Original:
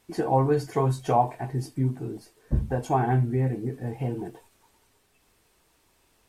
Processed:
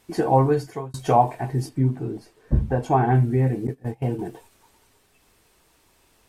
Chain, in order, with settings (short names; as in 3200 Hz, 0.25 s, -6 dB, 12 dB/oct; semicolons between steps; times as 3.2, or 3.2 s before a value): 0.41–0.94 fade out; 1.69–3.15 high shelf 5100 Hz -10 dB; 3.67–4.19 gate -30 dBFS, range -19 dB; gain +4.5 dB